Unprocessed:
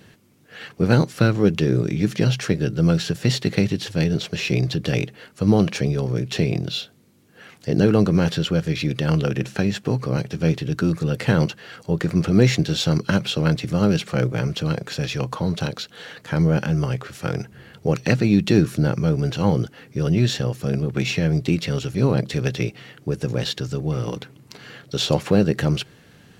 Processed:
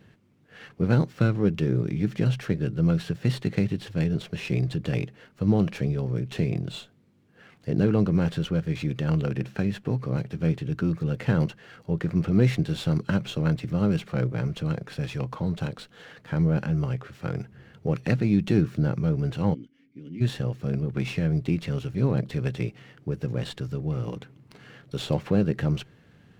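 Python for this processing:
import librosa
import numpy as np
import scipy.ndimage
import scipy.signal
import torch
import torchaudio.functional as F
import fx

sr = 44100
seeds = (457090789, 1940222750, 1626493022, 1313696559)

y = fx.vowel_filter(x, sr, vowel='i', at=(19.53, 20.2), fade=0.02)
y = fx.bass_treble(y, sr, bass_db=4, treble_db=-9)
y = fx.running_max(y, sr, window=3)
y = y * librosa.db_to_amplitude(-7.5)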